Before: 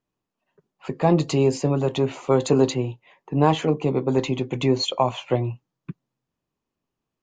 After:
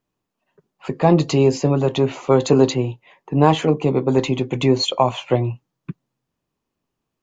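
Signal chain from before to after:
0:00.99–0:02.78: Butterworth low-pass 7,200 Hz 48 dB per octave
level +4 dB

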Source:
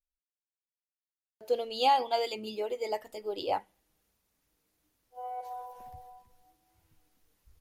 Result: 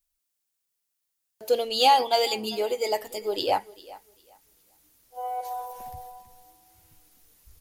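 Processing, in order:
high-shelf EQ 4,500 Hz +11 dB
in parallel at −8 dB: soft clipping −27 dBFS, distortion −8 dB
on the sum: feedback echo with a high-pass in the loop 399 ms, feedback 22%, high-pass 200 Hz, level −19.5 dB
level +4 dB

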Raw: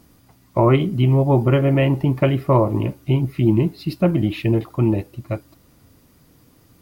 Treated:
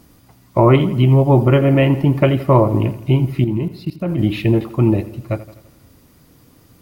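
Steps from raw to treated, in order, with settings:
0:03.44–0:04.19: output level in coarse steps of 23 dB
delay with a low-pass on its return 84 ms, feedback 54%, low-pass 3,900 Hz, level −15.5 dB
level +3.5 dB

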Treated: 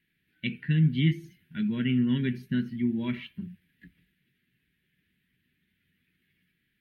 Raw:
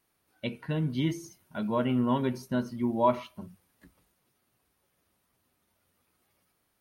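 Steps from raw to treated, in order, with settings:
drawn EQ curve 110 Hz 0 dB, 160 Hz +9 dB, 410 Hz −6 dB, 630 Hz −26 dB, 1,200 Hz −20 dB, 1,700 Hz +8 dB, 3,300 Hz +4 dB, 5,900 Hz −18 dB, 9,500 Hz −15 dB, 13,000 Hz −9 dB

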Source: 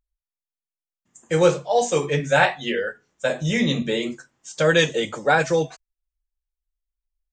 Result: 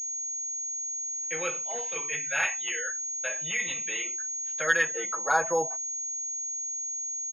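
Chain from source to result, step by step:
band-pass filter sweep 2,500 Hz → 760 Hz, 0:04.19–0:05.80
in parallel at −1 dB: downward compressor, threshold −39 dBFS, peak gain reduction 18.5 dB
on the sum: comb filter 6.1 ms, depth 70%
0:01.56–0:01.96: gain into a clipping stage and back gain 31.5 dB
switching amplifier with a slow clock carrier 6,600 Hz
level −2.5 dB

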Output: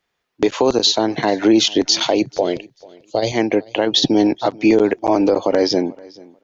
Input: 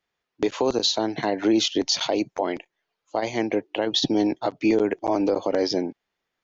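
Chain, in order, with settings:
0:02.22–0:03.32: octave-band graphic EQ 125/250/500/1,000/2,000/4,000 Hz +9/−5/+6/−10/−7/+9 dB
repeating echo 440 ms, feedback 18%, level −23.5 dB
level +7 dB

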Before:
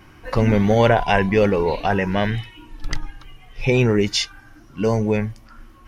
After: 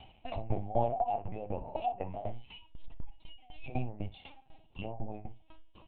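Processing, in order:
treble cut that deepens with the level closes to 930 Hz, closed at −16 dBFS
drawn EQ curve 110 Hz 0 dB, 230 Hz −10 dB, 350 Hz −23 dB, 730 Hz +10 dB, 1,500 Hz −24 dB, 2,600 Hz +4 dB
in parallel at +2 dB: downward compressor, threshold −32 dBFS, peak gain reduction 20.5 dB
on the sum: bit-depth reduction 12 bits, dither none
flanger 1.2 Hz, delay 1 ms, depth 5.7 ms, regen −69%
linear-prediction vocoder at 8 kHz pitch kept
on a send: ambience of single reflections 33 ms −15 dB, 60 ms −12 dB
on the sum: tremolo with a ramp in dB decaying 4 Hz, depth 18 dB
level −5.5 dB

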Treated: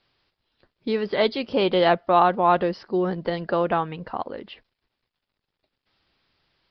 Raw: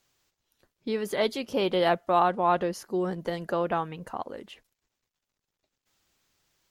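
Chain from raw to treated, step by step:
downsampling to 11,025 Hz
level +5 dB

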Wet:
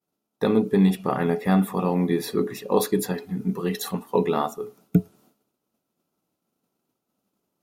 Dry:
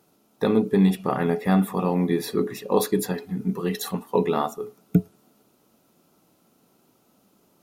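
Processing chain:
downward expander −51 dBFS

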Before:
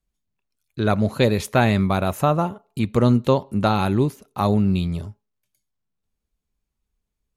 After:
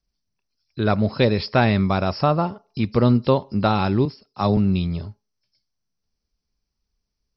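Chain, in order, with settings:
hearing-aid frequency compression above 4,000 Hz 4 to 1
0:04.05–0:04.57: multiband upward and downward expander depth 70%

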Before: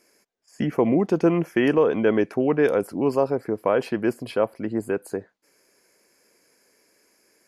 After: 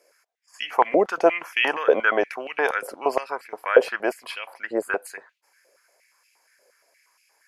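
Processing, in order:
noise gate −54 dBFS, range −6 dB
high-pass on a step sequencer 8.5 Hz 540–2,600 Hz
level +3 dB

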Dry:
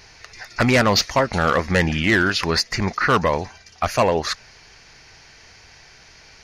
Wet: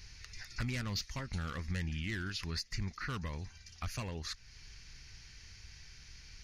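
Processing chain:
guitar amp tone stack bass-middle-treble 6-0-2
downward compressor 2 to 1, threshold −53 dBFS, peak gain reduction 12.5 dB
low-shelf EQ 72 Hz +10 dB
level +8 dB

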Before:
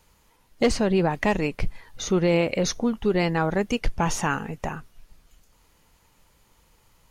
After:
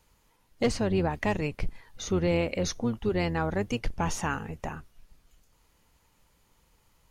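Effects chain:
sub-octave generator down 1 octave, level −5 dB
level −5.5 dB

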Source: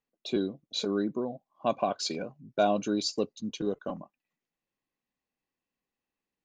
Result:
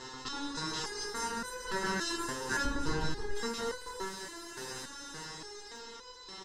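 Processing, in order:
compressor on every frequency bin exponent 0.2
delay with pitch and tempo change per echo 333 ms, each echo +3 semitones, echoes 3
high-shelf EQ 7,600 Hz +11 dB
comb filter 0.9 ms, depth 64%
ring modulation 670 Hz
0:02.64–0:03.35: RIAA equalisation playback
step-sequenced resonator 3.5 Hz 130–500 Hz

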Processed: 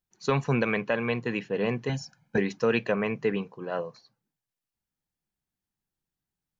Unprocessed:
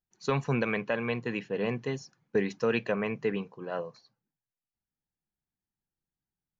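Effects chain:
0:01.89–0:02.38: comb filter 1.3 ms, depth 99%
level +3 dB

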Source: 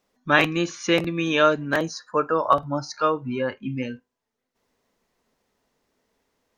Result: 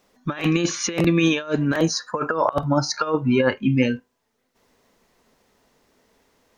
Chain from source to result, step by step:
compressor whose output falls as the input rises −25 dBFS, ratio −0.5
level +6 dB

